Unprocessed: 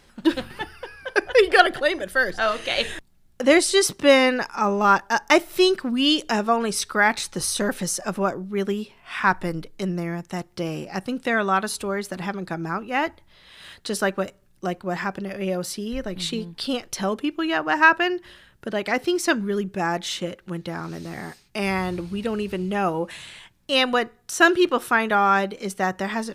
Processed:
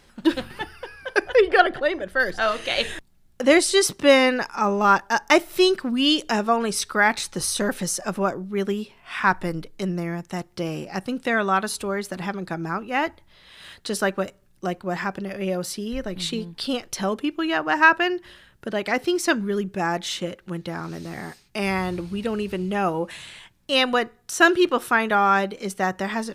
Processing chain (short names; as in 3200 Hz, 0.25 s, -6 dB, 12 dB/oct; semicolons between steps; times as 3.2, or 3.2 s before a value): 1.35–2.2 LPF 2000 Hz 6 dB/oct